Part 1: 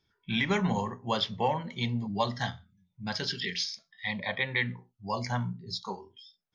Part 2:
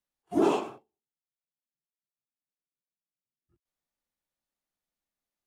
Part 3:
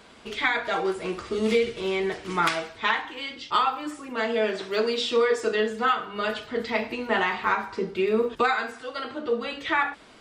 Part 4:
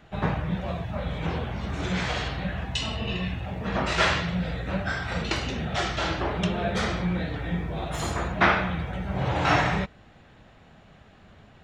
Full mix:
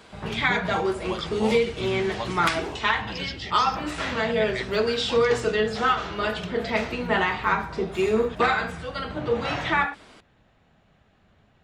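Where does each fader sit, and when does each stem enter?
-4.5, -10.5, +1.0, -8.5 dB; 0.00, 2.20, 0.00, 0.00 s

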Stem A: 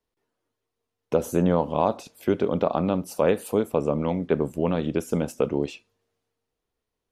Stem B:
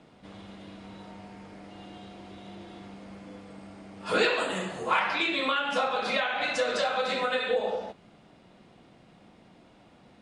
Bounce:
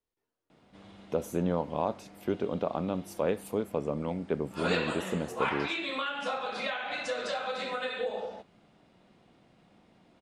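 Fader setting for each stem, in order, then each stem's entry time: -8.0, -6.0 dB; 0.00, 0.50 s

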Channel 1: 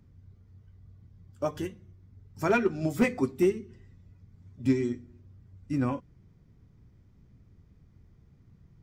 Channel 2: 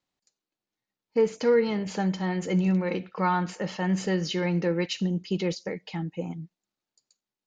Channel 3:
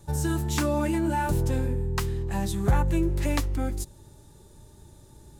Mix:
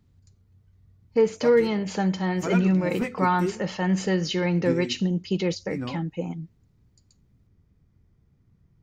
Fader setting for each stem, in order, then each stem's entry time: -4.5 dB, +2.5 dB, off; 0.00 s, 0.00 s, off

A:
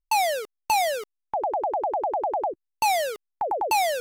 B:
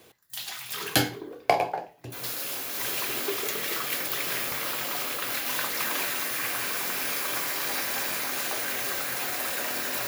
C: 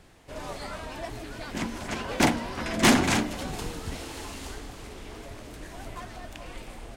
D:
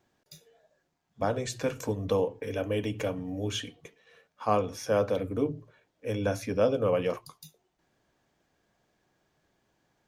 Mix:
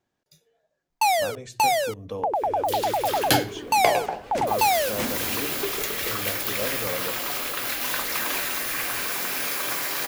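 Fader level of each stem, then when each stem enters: +1.5, +2.0, -11.5, -6.5 dB; 0.90, 2.35, 2.15, 0.00 s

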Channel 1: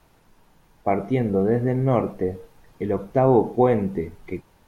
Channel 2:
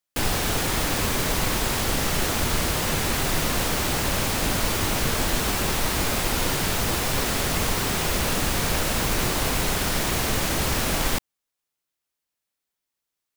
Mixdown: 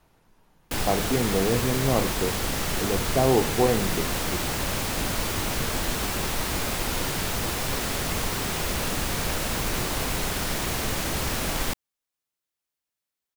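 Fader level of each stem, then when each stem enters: -4.0, -3.5 dB; 0.00, 0.55 s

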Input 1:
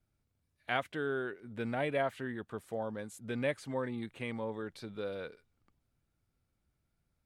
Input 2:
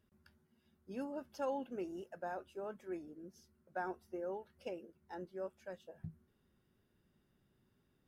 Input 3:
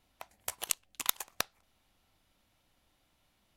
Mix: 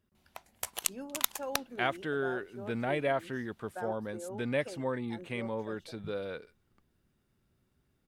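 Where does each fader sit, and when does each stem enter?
+2.0, -1.0, +0.5 dB; 1.10, 0.00, 0.15 s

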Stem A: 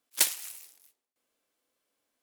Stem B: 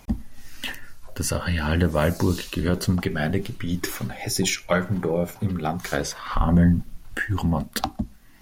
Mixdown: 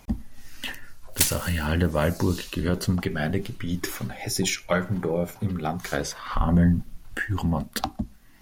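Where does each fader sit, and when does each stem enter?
+2.5, -2.0 dB; 1.00, 0.00 s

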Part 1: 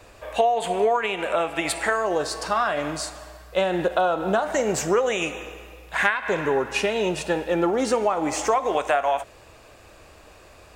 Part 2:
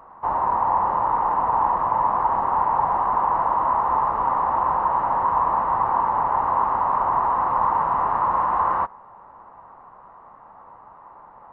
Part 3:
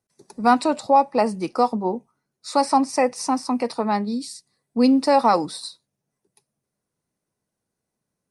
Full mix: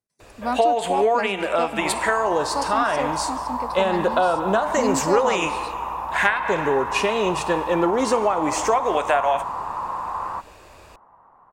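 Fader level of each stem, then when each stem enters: +1.5, -7.5, -9.0 dB; 0.20, 1.55, 0.00 s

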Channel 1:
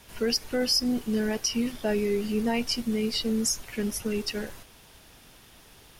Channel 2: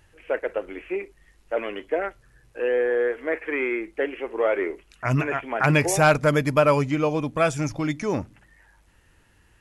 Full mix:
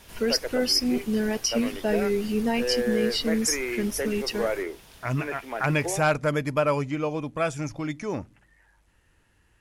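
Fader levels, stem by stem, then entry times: +1.5, -5.0 dB; 0.00, 0.00 s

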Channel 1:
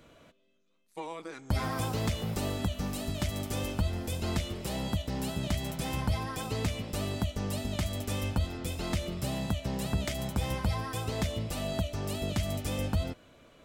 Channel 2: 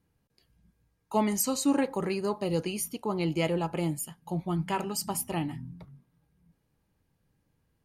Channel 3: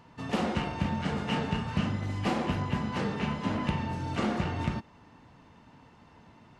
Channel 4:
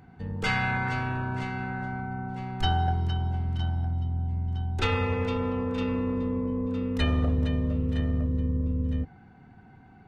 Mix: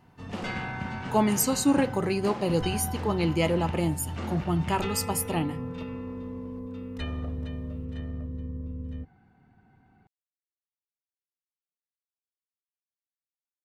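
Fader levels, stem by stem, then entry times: off, +3.0 dB, -7.0 dB, -8.5 dB; off, 0.00 s, 0.00 s, 0.00 s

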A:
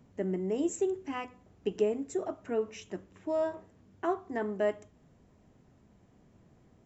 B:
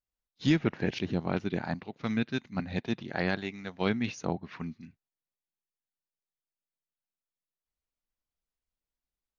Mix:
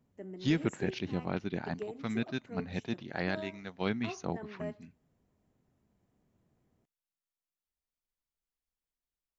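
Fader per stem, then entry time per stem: -12.5, -4.0 dB; 0.00, 0.00 s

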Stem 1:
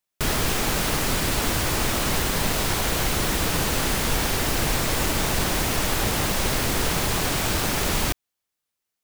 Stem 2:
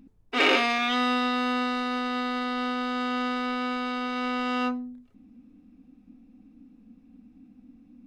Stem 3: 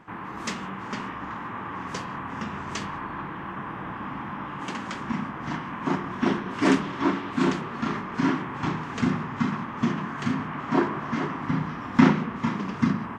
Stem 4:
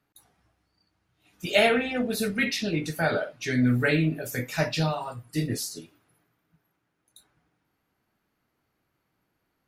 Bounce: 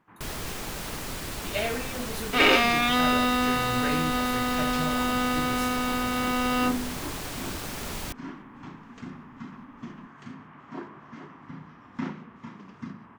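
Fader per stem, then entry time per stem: -11.5, +2.0, -16.0, -9.0 dB; 0.00, 2.00, 0.00, 0.00 s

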